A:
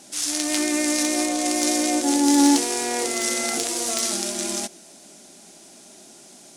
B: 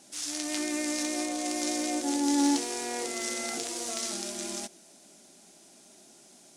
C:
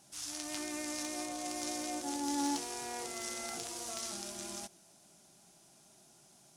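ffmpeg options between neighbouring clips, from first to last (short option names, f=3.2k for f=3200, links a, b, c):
-filter_complex "[0:a]acrossover=split=9400[a][b];[b]acompressor=threshold=-37dB:ratio=4:attack=1:release=60[c];[a][c]amix=inputs=2:normalize=0,volume=-8.5dB"
-af "equalizer=f=125:t=o:w=1:g=8,equalizer=f=250:t=o:w=1:g=-11,equalizer=f=500:t=o:w=1:g=-8,equalizer=f=2k:t=o:w=1:g=-7,equalizer=f=4k:t=o:w=1:g=-5,equalizer=f=8k:t=o:w=1:g=-7"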